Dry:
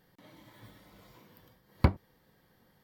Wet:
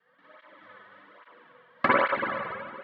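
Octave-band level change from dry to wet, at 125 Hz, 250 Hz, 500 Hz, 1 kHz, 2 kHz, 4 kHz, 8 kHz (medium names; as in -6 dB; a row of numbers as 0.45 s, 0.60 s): -14.5 dB, +1.0 dB, +12.5 dB, +16.0 dB, +19.5 dB, +9.5 dB, no reading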